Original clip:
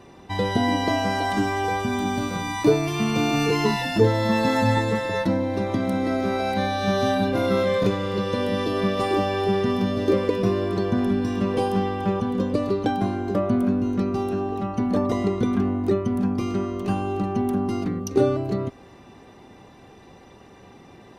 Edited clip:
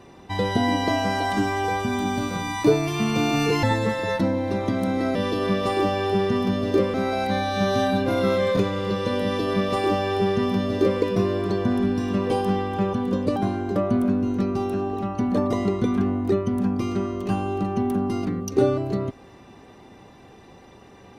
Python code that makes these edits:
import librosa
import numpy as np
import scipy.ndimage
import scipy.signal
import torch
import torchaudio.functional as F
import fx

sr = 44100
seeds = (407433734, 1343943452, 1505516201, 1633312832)

y = fx.edit(x, sr, fx.cut(start_s=3.63, length_s=1.06),
    fx.duplicate(start_s=8.49, length_s=1.79, to_s=6.21),
    fx.cut(start_s=12.63, length_s=0.32), tone=tone)